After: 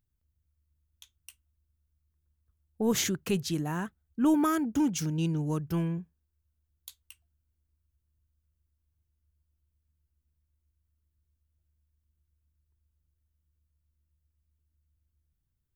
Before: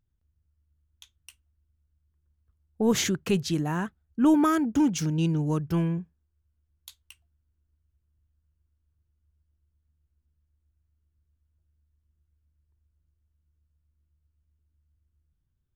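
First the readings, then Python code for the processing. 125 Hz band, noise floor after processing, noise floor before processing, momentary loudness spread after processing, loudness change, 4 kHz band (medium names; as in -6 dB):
-4.0 dB, -80 dBFS, -76 dBFS, 8 LU, -4.0 dB, -3.0 dB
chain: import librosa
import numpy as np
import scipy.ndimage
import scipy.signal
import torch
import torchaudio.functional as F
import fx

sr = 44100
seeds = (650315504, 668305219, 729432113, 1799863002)

y = fx.high_shelf(x, sr, hz=9800.0, db=10.5)
y = y * 10.0 ** (-4.0 / 20.0)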